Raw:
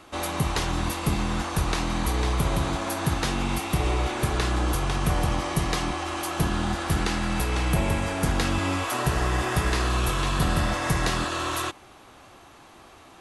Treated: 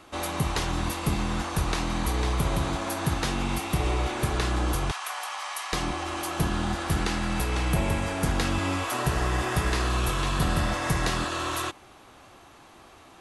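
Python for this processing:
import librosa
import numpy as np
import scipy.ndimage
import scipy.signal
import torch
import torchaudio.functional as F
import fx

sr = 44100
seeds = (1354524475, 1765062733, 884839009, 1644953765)

y = fx.highpass(x, sr, hz=840.0, slope=24, at=(4.91, 5.73))
y = F.gain(torch.from_numpy(y), -1.5).numpy()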